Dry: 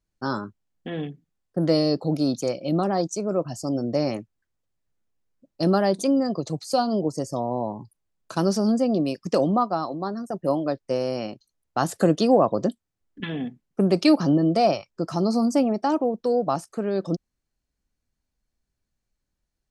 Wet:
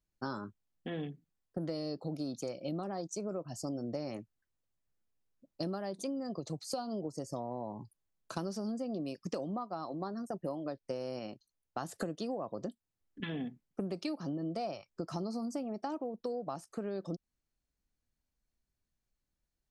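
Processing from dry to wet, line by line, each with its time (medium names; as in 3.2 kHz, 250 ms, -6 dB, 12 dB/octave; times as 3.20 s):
11.19–11.98 s: gain -3 dB
whole clip: compression 10:1, threshold -28 dBFS; trim -6 dB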